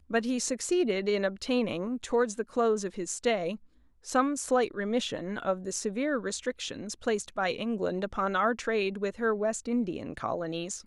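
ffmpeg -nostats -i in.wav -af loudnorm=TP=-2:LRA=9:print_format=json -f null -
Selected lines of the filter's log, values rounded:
"input_i" : "-30.3",
"input_tp" : "-11.8",
"input_lra" : "1.5",
"input_thresh" : "-40.4",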